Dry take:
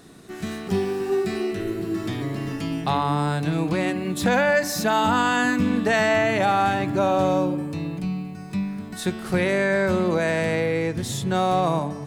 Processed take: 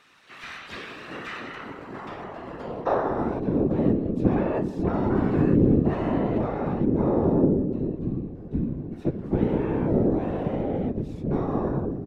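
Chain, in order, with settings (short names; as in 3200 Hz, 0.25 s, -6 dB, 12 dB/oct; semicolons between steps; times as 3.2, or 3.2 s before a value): band-pass sweep 2400 Hz -> 280 Hz, 0.96–4; harmoniser -7 st 0 dB, +7 st -7 dB; whisperiser; gain +2 dB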